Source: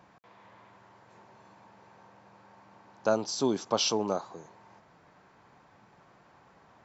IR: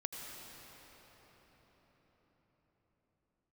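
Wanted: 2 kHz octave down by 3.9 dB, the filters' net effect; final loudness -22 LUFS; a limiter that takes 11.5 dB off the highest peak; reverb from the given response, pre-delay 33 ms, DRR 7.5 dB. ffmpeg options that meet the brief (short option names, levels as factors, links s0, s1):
-filter_complex "[0:a]equalizer=f=2000:t=o:g=-6.5,alimiter=level_in=1.06:limit=0.0631:level=0:latency=1,volume=0.944,asplit=2[s0][s1];[1:a]atrim=start_sample=2205,adelay=33[s2];[s1][s2]afir=irnorm=-1:irlink=0,volume=0.422[s3];[s0][s3]amix=inputs=2:normalize=0,volume=5.01"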